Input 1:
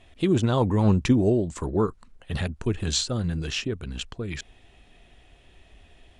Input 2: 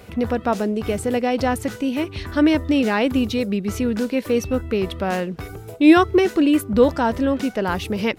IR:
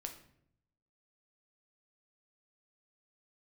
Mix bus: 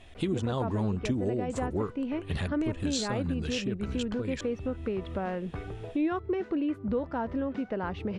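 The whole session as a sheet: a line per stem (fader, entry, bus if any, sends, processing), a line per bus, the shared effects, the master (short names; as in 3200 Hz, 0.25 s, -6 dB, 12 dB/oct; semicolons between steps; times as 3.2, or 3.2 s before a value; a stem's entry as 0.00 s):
+2.0 dB, 0.00 s, no send, dry
-4.0 dB, 0.15 s, no send, Bessel low-pass 1700 Hz, order 2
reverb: off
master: compressor 3:1, threshold -30 dBFS, peak gain reduction 14 dB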